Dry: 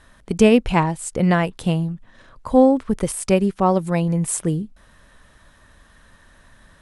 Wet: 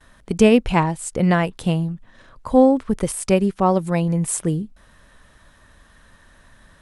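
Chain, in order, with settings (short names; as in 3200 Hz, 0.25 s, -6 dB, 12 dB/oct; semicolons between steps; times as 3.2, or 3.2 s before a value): gate with hold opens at -43 dBFS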